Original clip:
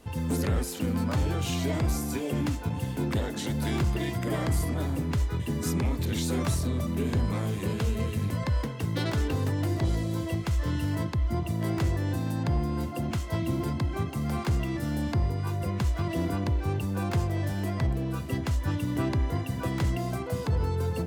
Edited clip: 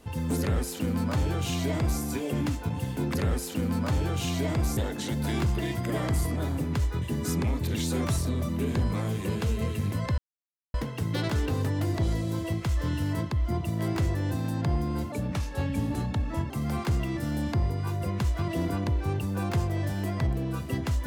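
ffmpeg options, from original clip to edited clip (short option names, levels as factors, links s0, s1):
-filter_complex "[0:a]asplit=6[s0][s1][s2][s3][s4][s5];[s0]atrim=end=3.152[s6];[s1]atrim=start=0.398:end=2.022[s7];[s2]atrim=start=3.148:end=8.56,asetpts=PTS-STARTPTS,afade=t=out:st=5.408:d=0.004:c=hsin,apad=pad_dur=0.56[s8];[s3]atrim=start=8.56:end=12.944,asetpts=PTS-STARTPTS,afade=t=in:d=0.004:c=hsin[s9];[s4]atrim=start=12.94:end=14.1,asetpts=PTS-STARTPTS,asetrate=37044,aresample=44100[s10];[s5]atrim=start=14.096[s11];[s6][s7]acrossfade=d=0.004:c1=hsin:c2=hsin[s12];[s8][s9]concat=n=2:v=0:a=1[s13];[s12][s13]acrossfade=d=0.004:c1=hsin:c2=hsin[s14];[s14][s10]acrossfade=d=0.004:c1=hsin:c2=hsin[s15];[s15][s11]acrossfade=d=0.004:c1=hsin:c2=hsin"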